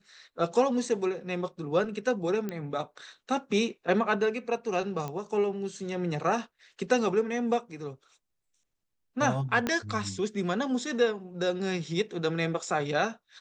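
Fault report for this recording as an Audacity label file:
2.490000	2.490000	click −20 dBFS
5.080000	5.080000	click −22 dBFS
9.670000	9.670000	click −14 dBFS

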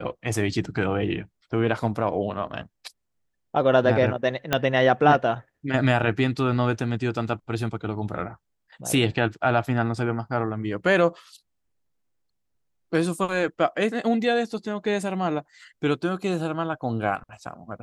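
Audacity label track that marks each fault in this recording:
4.530000	4.530000	click −6 dBFS

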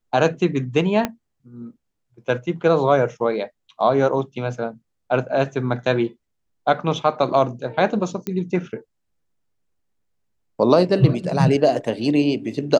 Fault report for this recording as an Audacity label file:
1.050000	1.050000	click −7 dBFS
8.270000	8.270000	click −14 dBFS

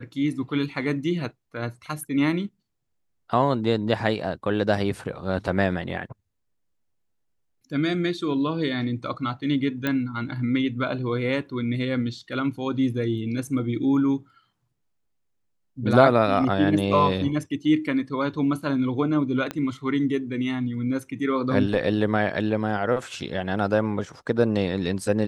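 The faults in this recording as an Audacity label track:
9.870000	9.870000	click −12 dBFS
19.510000	19.510000	click −15 dBFS

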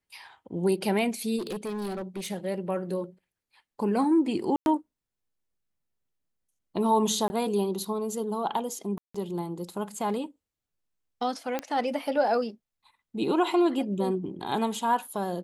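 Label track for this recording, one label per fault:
1.380000	2.310000	clipping −29.5 dBFS
4.560000	4.660000	drop-out 101 ms
7.280000	7.300000	drop-out 20 ms
8.980000	9.140000	drop-out 165 ms
11.590000	11.590000	click −15 dBFS

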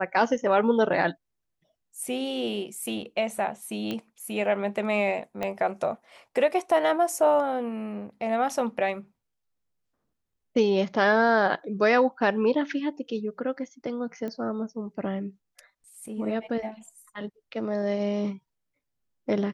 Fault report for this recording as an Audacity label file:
3.910000	3.910000	click −18 dBFS
5.430000	5.430000	click −16 dBFS
14.280000	14.280000	click −23 dBFS

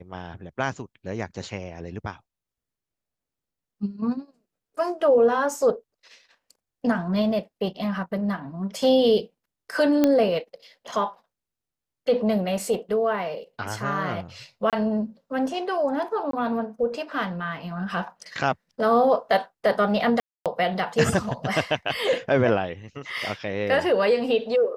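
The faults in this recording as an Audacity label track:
10.040000	10.040000	click −7 dBFS
14.700000	14.730000	drop-out 27 ms
16.310000	16.330000	drop-out 23 ms
20.200000	20.460000	drop-out 257 ms

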